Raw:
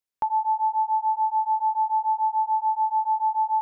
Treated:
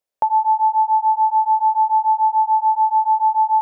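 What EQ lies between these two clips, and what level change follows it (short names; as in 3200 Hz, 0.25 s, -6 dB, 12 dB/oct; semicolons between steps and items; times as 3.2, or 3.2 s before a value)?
bell 590 Hz +13 dB 0.89 oct; +2.0 dB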